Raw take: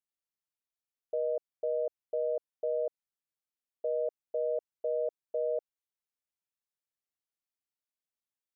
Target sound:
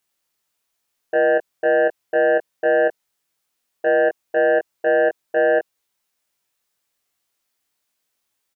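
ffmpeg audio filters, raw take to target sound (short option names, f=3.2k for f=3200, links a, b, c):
-filter_complex "[0:a]lowshelf=f=290:g=-4.5,aeval=exprs='0.0531*sin(PI/2*1.78*val(0)/0.0531)':c=same,asplit=2[a][b];[b]adelay=21,volume=-3dB[c];[a][c]amix=inputs=2:normalize=0,volume=8.5dB"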